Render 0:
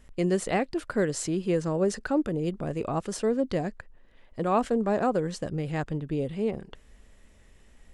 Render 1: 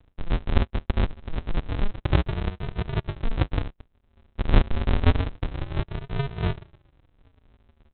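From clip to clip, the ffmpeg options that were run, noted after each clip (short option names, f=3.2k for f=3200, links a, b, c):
-af "highpass=f=560:p=1,aresample=8000,acrusher=samples=41:mix=1:aa=0.000001:lfo=1:lforange=24.6:lforate=0.28,aresample=44100,volume=8.5dB"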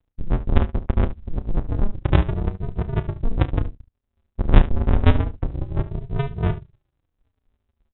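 -filter_complex "[0:a]afftdn=nr=19:nf=-33,asplit=2[a][b];[b]aecho=0:1:32|72:0.224|0.168[c];[a][c]amix=inputs=2:normalize=0,volume=4dB"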